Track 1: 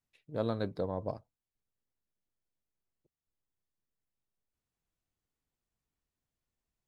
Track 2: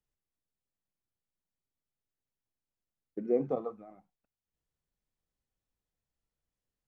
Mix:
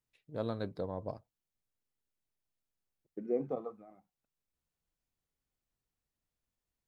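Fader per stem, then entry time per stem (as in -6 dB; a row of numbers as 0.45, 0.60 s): -3.5, -4.5 dB; 0.00, 0.00 s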